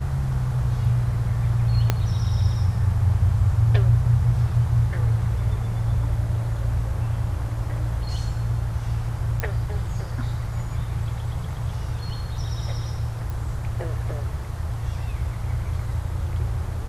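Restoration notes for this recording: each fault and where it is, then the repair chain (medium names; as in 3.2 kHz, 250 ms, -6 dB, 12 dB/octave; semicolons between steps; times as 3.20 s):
1.90 s: pop -6 dBFS
9.40 s: pop -11 dBFS
13.30 s: pop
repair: de-click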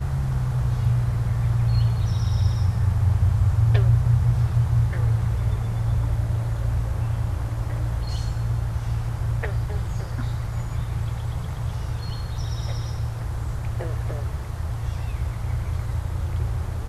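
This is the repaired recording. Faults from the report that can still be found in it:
1.90 s: pop
9.40 s: pop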